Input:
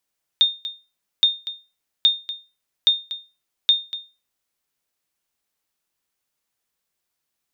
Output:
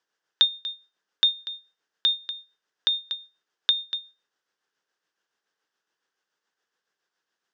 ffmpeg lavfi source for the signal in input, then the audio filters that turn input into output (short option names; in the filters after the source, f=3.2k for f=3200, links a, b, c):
-f lavfi -i "aevalsrc='0.422*(sin(2*PI*3650*mod(t,0.82))*exp(-6.91*mod(t,0.82)/0.29)+0.188*sin(2*PI*3650*max(mod(t,0.82)-0.24,0))*exp(-6.91*max(mod(t,0.82)-0.24,0)/0.29))':d=4.1:s=44100"
-filter_complex "[0:a]asplit=2[a][b];[b]acompressor=threshold=-25dB:ratio=6,volume=-1.5dB[c];[a][c]amix=inputs=2:normalize=0,tremolo=f=7.1:d=0.44,highpass=250,equalizer=f=250:t=q:w=4:g=-4,equalizer=f=440:t=q:w=4:g=4,equalizer=f=630:t=q:w=4:g=-4,equalizer=f=1.6k:t=q:w=4:g=8,equalizer=f=2.3k:t=q:w=4:g=-8,equalizer=f=4.1k:t=q:w=4:g=-6,lowpass=f=5.6k:w=0.5412,lowpass=f=5.6k:w=1.3066"